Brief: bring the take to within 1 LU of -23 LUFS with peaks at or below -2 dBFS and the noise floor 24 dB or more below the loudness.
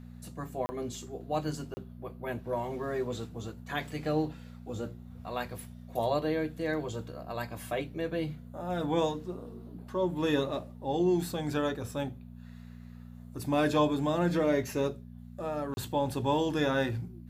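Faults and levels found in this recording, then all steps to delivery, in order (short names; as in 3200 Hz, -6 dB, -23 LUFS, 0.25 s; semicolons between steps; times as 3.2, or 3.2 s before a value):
dropouts 3; longest dropout 30 ms; hum 60 Hz; harmonics up to 240 Hz; hum level -45 dBFS; loudness -32.5 LUFS; peak -14.0 dBFS; loudness target -23.0 LUFS
-> interpolate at 0.66/1.74/15.74, 30 ms; de-hum 60 Hz, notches 4; gain +9.5 dB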